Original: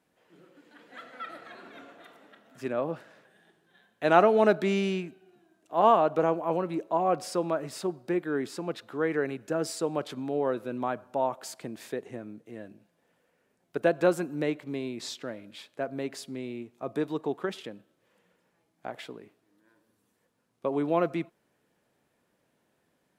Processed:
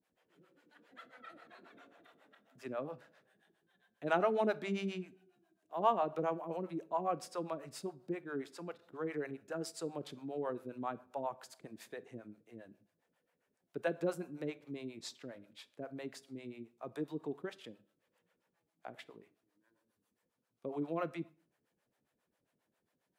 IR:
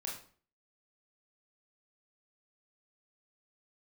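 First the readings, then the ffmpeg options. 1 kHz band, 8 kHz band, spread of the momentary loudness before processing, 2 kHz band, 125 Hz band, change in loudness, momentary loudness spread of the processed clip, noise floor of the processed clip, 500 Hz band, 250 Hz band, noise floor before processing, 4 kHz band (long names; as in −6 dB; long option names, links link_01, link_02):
−10.5 dB, −10.5 dB, 20 LU, −10.5 dB, −10.0 dB, −10.5 dB, 20 LU, −84 dBFS, −11.5 dB, −10.5 dB, −74 dBFS, −10.0 dB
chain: -filter_complex "[0:a]acrossover=split=480[link_01][link_02];[link_01]aeval=exprs='val(0)*(1-1/2+1/2*cos(2*PI*7.4*n/s))':channel_layout=same[link_03];[link_02]aeval=exprs='val(0)*(1-1/2-1/2*cos(2*PI*7.4*n/s))':channel_layout=same[link_04];[link_03][link_04]amix=inputs=2:normalize=0,asplit=2[link_05][link_06];[1:a]atrim=start_sample=2205[link_07];[link_06][link_07]afir=irnorm=-1:irlink=0,volume=-15.5dB[link_08];[link_05][link_08]amix=inputs=2:normalize=0,volume=-6.5dB"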